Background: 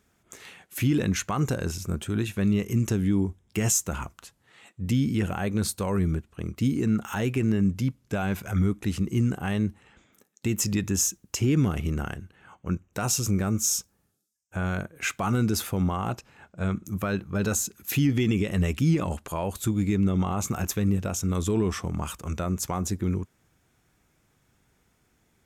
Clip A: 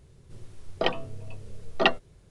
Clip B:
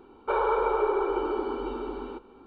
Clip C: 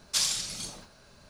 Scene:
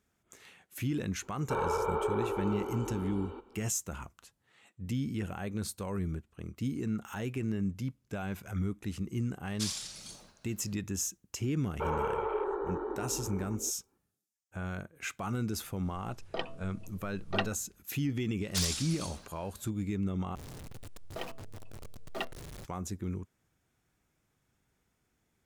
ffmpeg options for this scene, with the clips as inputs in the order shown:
-filter_complex "[2:a]asplit=2[a][b];[3:a]asplit=2[c][d];[1:a]asplit=2[e][f];[0:a]volume=-9.5dB[g];[b]afwtdn=0.02[h];[d]aeval=exprs='(mod(5.96*val(0)+1,2)-1)/5.96':c=same[i];[f]aeval=exprs='val(0)+0.5*0.0794*sgn(val(0))':c=same[j];[g]asplit=2[k][l];[k]atrim=end=20.354[m];[j]atrim=end=2.3,asetpts=PTS-STARTPTS,volume=-17.5dB[n];[l]atrim=start=22.646[o];[a]atrim=end=2.46,asetpts=PTS-STARTPTS,volume=-6.5dB,afade=t=in:d=0.004:c=hsin,afade=t=out:st=2.456:d=0.004:c=hsin,adelay=1220[p];[c]atrim=end=1.29,asetpts=PTS-STARTPTS,volume=-9.5dB,afade=t=in:d=0.004:c=hsin,afade=t=out:st=1.286:d=0.004:c=hsin,adelay=417186S[q];[h]atrim=end=2.46,asetpts=PTS-STARTPTS,volume=-7.5dB,afade=t=in:d=0.004:c=hsin,afade=t=out:st=2.456:d=0.004:c=hsin,adelay=11520[r];[e]atrim=end=2.3,asetpts=PTS-STARTPTS,volume=-10.5dB,afade=t=in:d=0.004:c=hsin,afade=t=out:st=2.296:d=0.004:c=hsin,adelay=15530[s];[i]atrim=end=1.29,asetpts=PTS-STARTPTS,volume=-5.5dB,afade=t=in:d=0.004:c=hsin,afade=t=out:st=1.286:d=0.004:c=hsin,adelay=18410[t];[m][n]acrossfade=d=0.004:c1=hsin:c2=hsin[u];[u][o]acrossfade=d=0.004:c1=hsin:c2=hsin[v];[v][p][q][r][s][t]amix=inputs=6:normalize=0"

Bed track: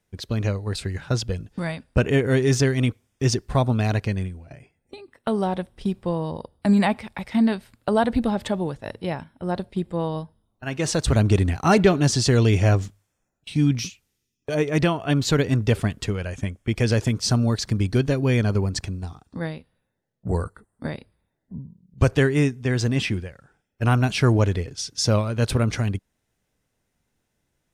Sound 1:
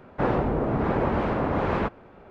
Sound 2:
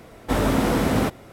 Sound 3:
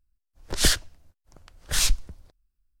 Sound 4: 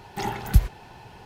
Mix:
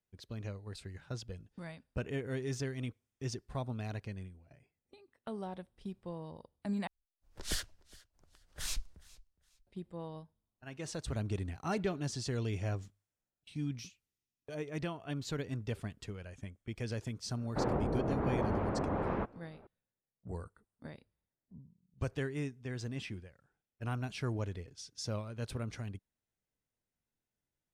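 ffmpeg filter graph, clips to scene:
-filter_complex "[0:a]volume=-18dB[a];[3:a]aecho=1:1:414|828:0.075|0.0202[b];[1:a]lowpass=f=1.3k:p=1[c];[a]asplit=2[d][e];[d]atrim=end=6.874[f];[b]atrim=end=2.8,asetpts=PTS-STARTPTS,volume=-16dB[g];[e]atrim=start=9.666[h];[c]atrim=end=2.3,asetpts=PTS-STARTPTS,volume=-8.5dB,afade=t=in:d=0.004:c=hsin,afade=t=out:st=2.296:d=0.004:c=hsin,adelay=17370[i];[f][g]acrossfade=d=0.004:c1=hsin:c2=hsin[j];[j][h]acrossfade=d=0.004:c1=hsin:c2=hsin[k];[k][i]amix=inputs=2:normalize=0"

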